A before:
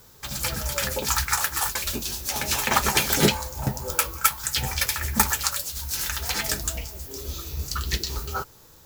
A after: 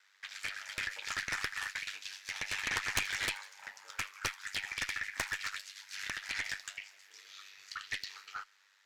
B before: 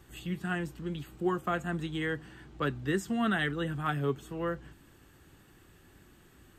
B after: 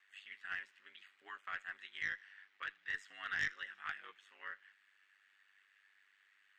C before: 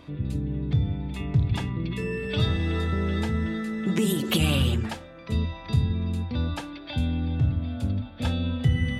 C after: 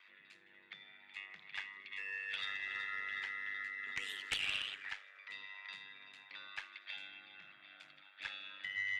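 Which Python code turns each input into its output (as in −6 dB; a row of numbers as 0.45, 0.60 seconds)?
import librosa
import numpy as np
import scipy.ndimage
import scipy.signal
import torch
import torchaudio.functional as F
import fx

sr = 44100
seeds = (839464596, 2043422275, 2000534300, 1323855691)

y = x * np.sin(2.0 * np.pi * 49.0 * np.arange(len(x)) / sr)
y = fx.ladder_bandpass(y, sr, hz=2200.0, resonance_pct=55)
y = fx.cheby_harmonics(y, sr, harmonics=(3, 4, 7), levels_db=(-12, -15, -11), full_scale_db=-17.5)
y = fx.echo_wet_highpass(y, sr, ms=80, feedback_pct=58, hz=3000.0, wet_db=-19.5)
y = F.gain(torch.from_numpy(y), 2.0).numpy()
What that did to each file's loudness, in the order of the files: −13.0, −10.5, −15.0 LU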